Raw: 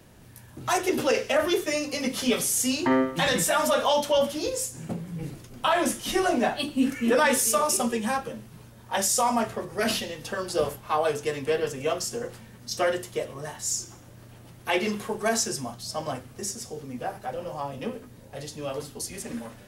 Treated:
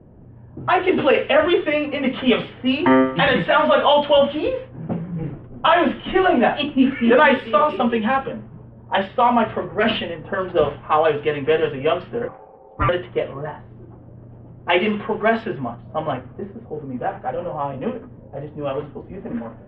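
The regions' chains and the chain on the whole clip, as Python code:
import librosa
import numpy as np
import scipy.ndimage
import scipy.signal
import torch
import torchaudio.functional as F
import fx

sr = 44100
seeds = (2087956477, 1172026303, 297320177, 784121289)

y = fx.chain(x, sr, fx.lowpass(hz=1700.0, slope=12),
    fx.ring_mod(carrier_hz=650.0), at=(12.28, 12.89))
y = scipy.signal.sosfilt(scipy.signal.ellip(4, 1.0, 50, 3200.0, 'lowpass', fs=sr, output='sos'), y)
y = fx.env_lowpass(y, sr, base_hz=510.0, full_db=-22.0)
y = y * librosa.db_to_amplitude(8.5)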